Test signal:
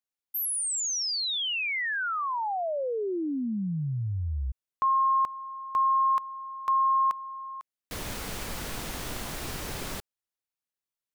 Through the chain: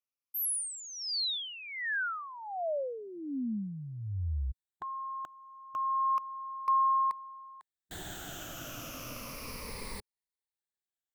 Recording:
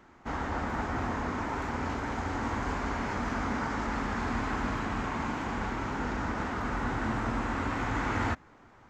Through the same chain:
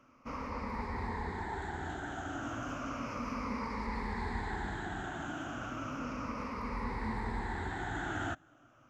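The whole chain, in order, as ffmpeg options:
-af "afftfilt=real='re*pow(10,14/40*sin(2*PI*(0.9*log(max(b,1)*sr/1024/100)/log(2)-(-0.33)*(pts-256)/sr)))':imag='im*pow(10,14/40*sin(2*PI*(0.9*log(max(b,1)*sr/1024/100)/log(2)-(-0.33)*(pts-256)/sr)))':win_size=1024:overlap=0.75,volume=-8.5dB"

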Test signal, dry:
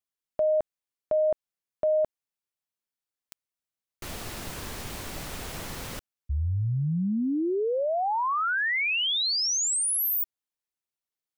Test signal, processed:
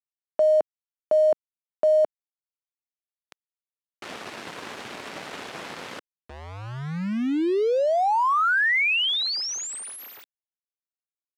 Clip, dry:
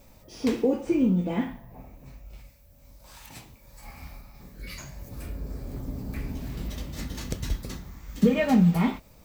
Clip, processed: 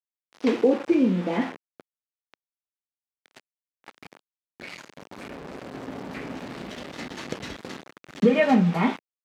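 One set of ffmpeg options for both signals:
-af "aeval=exprs='val(0)*gte(abs(val(0)),0.0168)':c=same,crystalizer=i=2:c=0,highpass=260,lowpass=2.5k,volume=5dB"

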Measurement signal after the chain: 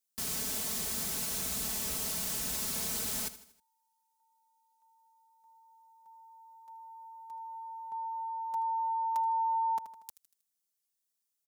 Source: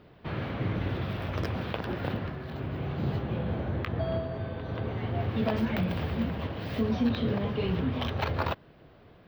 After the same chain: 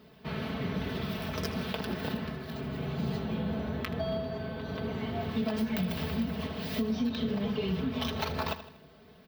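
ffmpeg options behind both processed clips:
-af "highpass=68,aecho=1:1:4.6:0.77,aecho=1:1:79|158|237|316:0.178|0.0854|0.041|0.0197,acompressor=threshold=-25dB:ratio=6,bass=f=250:g=3,treble=f=4k:g=14,volume=-3.5dB"

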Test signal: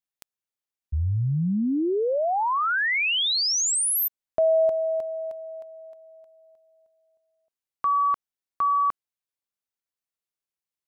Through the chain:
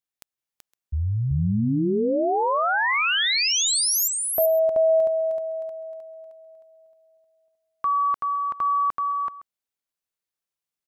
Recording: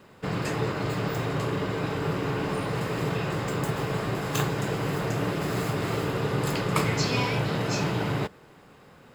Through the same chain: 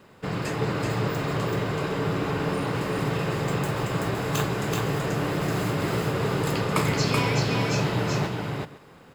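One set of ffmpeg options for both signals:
-af "aecho=1:1:380|513:0.708|0.112"

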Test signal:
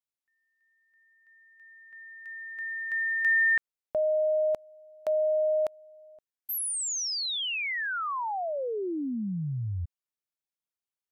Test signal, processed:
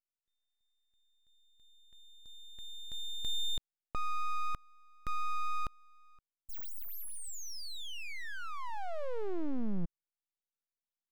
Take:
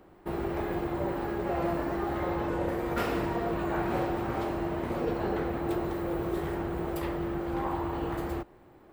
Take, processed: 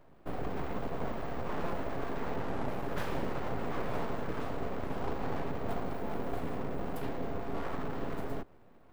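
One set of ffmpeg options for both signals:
-af "lowshelf=f=360:g=10.5,aeval=exprs='abs(val(0))':c=same,volume=-7.5dB"

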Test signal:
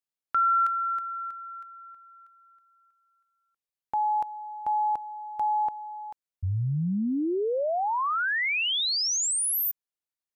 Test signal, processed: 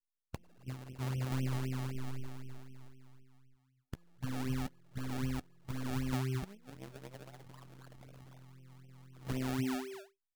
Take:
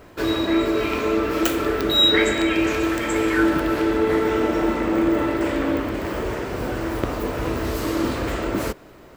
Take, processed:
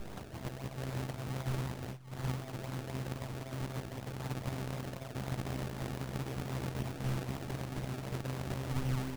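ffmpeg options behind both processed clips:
-filter_complex "[0:a]acompressor=threshold=-24dB:ratio=16:attack=0.13:release=439:knee=1:detection=peak,aresample=16000,aeval=exprs='abs(val(0))':c=same,aresample=44100,lowshelf=f=210:g=8,asplit=2[a][b];[b]adelay=15,volume=-2.5dB[c];[a][c]amix=inputs=2:normalize=0,asplit=4[d][e][f][g];[e]adelay=215,afreqshift=-130,volume=-12dB[h];[f]adelay=430,afreqshift=-260,volume=-21.9dB[i];[g]adelay=645,afreqshift=-390,volume=-31.8dB[j];[d][h][i][j]amix=inputs=4:normalize=0,acrossover=split=2300[k][l];[k]acontrast=63[m];[m][l]amix=inputs=2:normalize=0,equalizer=f=1.2k:t=o:w=1.7:g=-4,asoftclip=type=tanh:threshold=-17.5dB,afftfilt=real='re*lt(hypot(re,im),0.562)':imag='im*lt(hypot(re,im),0.562)':win_size=1024:overlap=0.75,aresample=8000,aresample=44100,afftdn=nr=21:nf=-58,acrusher=samples=30:mix=1:aa=0.000001:lfo=1:lforange=30:lforate=3.9,volume=-3.5dB"

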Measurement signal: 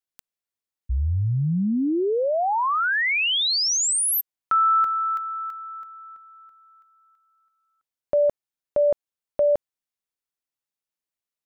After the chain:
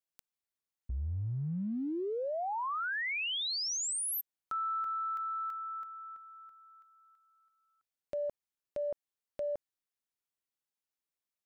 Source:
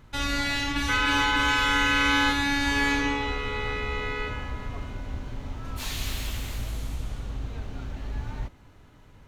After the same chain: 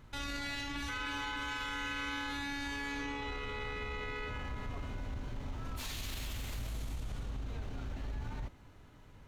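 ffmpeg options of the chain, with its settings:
-af "acompressor=threshold=-30dB:ratio=5:attack=0.17:release=68:knee=1:detection=peak,volume=-4dB"

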